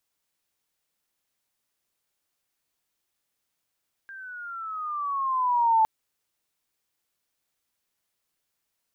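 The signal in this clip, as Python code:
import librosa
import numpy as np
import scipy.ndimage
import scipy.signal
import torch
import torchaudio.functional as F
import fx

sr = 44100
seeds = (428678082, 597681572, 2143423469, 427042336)

y = fx.riser_tone(sr, length_s=1.76, level_db=-16.0, wave='sine', hz=1600.0, rise_st=-10.5, swell_db=23.0)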